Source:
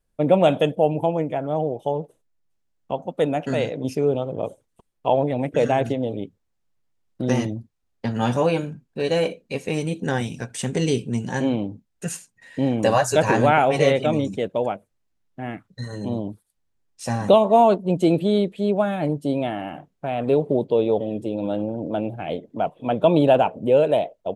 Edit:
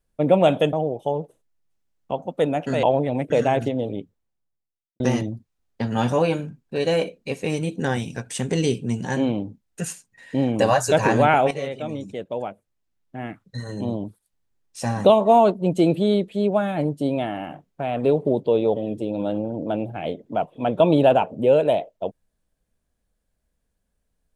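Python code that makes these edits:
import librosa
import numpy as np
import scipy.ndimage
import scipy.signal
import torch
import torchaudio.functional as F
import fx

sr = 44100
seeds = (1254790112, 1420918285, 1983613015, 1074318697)

y = fx.studio_fade_out(x, sr, start_s=6.08, length_s=1.16)
y = fx.edit(y, sr, fx.cut(start_s=0.73, length_s=0.8),
    fx.cut(start_s=3.63, length_s=1.44),
    fx.fade_in_from(start_s=13.75, length_s=2.06, floor_db=-13.0), tone=tone)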